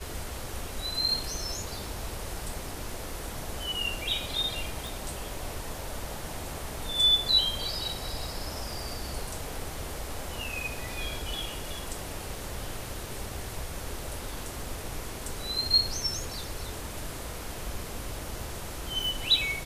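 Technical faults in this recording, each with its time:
0:04.87: click

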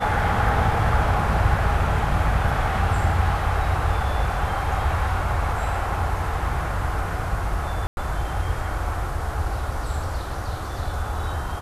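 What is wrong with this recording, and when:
0:07.87–0:07.97: drop-out 101 ms

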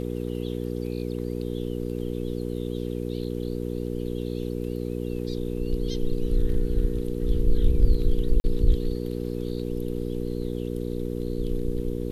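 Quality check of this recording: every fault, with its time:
mains hum 60 Hz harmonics 8 −30 dBFS
0:08.40–0:08.44: drop-out 40 ms

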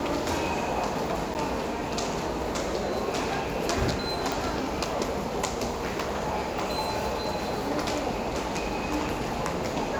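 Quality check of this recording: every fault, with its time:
0:01.34–0:01.35: drop-out 9.4 ms
0:04.32: click

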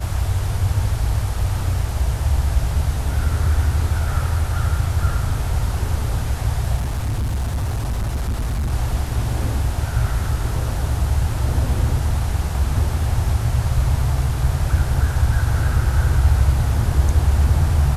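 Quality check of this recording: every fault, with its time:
0:06.76–0:08.72: clipping −18.5 dBFS

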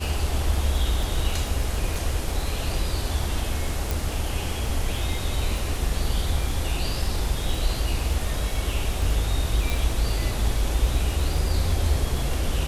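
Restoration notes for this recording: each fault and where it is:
surface crackle 17 per second −27 dBFS
0:03.91: click
0:09.70: click

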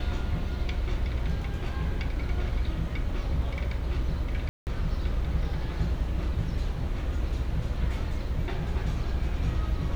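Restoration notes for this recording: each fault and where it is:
0:04.49–0:04.67: drop-out 179 ms

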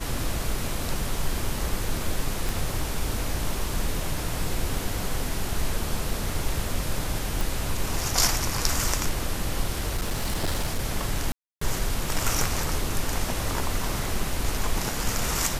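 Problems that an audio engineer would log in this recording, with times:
0:02.49: click
0:07.41: click
0:09.94–0:10.80: clipping −21.5 dBFS
0:11.32–0:11.61: drop-out 294 ms

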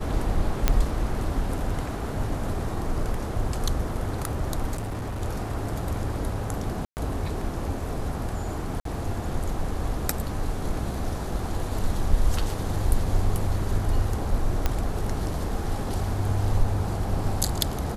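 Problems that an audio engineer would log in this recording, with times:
0:00.68: click −5 dBFS
0:04.75–0:05.22: clipping −27.5 dBFS
0:06.85–0:06.97: drop-out 119 ms
0:08.80–0:08.85: drop-out 53 ms
0:14.66: click −9 dBFS

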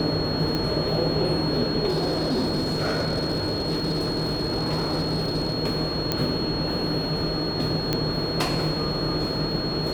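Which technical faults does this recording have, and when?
whistle 4,300 Hz −30 dBFS
0:00.55: click −14 dBFS
0:01.88–0:05.55: clipping −20 dBFS
0:06.12: click −8 dBFS
0:07.93: click −9 dBFS

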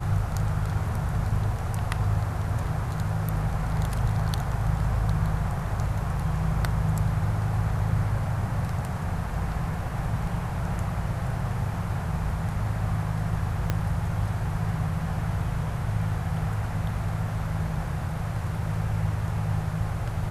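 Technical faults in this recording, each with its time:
0:13.70: click −12 dBFS

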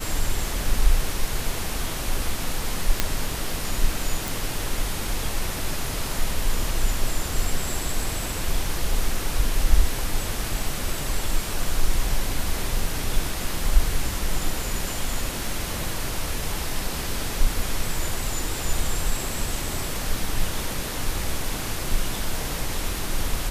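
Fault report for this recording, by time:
0:03.00: click −3 dBFS
0:04.28: click

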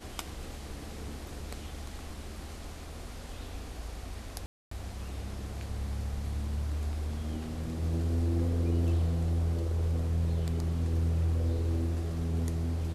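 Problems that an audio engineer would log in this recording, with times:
0:04.46–0:04.71: drop-out 254 ms

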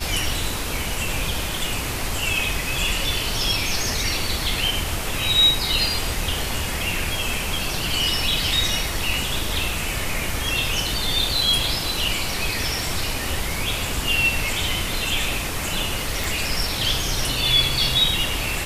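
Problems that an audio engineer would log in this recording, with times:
0:16.24: click

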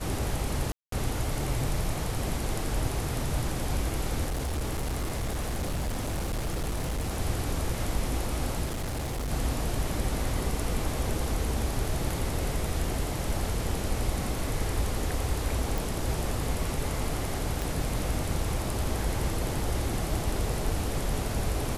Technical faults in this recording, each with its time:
0:00.72–0:00.92: drop-out 203 ms
0:04.27–0:07.19: clipping −26.5 dBFS
0:08.65–0:09.31: clipping −28.5 dBFS
0:15.78: click
0:17.62: click

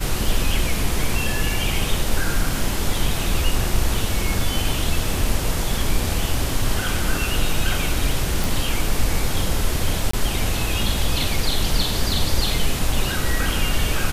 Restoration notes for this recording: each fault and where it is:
0:08.44: click
0:10.11–0:10.13: drop-out 24 ms

